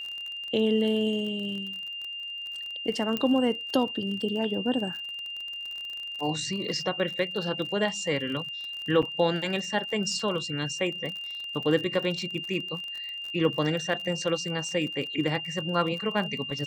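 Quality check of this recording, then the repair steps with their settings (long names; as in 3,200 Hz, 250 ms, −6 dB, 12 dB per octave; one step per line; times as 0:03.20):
surface crackle 40 per second −34 dBFS
whistle 2,800 Hz −34 dBFS
0:03.17: click −15 dBFS
0:09.02–0:09.03: drop-out 6.2 ms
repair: click removal
notch filter 2,800 Hz, Q 30
repair the gap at 0:09.02, 6.2 ms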